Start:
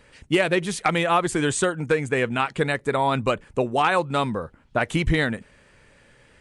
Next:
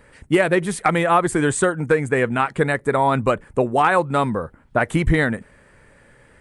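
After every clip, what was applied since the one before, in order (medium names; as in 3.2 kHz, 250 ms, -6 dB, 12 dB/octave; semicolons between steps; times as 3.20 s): high-order bell 4.1 kHz -8 dB; trim +4 dB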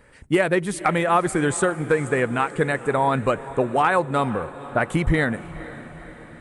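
echo that smears into a reverb 488 ms, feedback 58%, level -16 dB; trim -2.5 dB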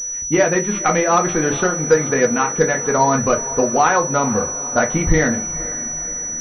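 on a send at -2 dB: reverberation RT60 0.25 s, pre-delay 4 ms; on the sum: class-D stage that switches slowly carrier 5.9 kHz; trim +2 dB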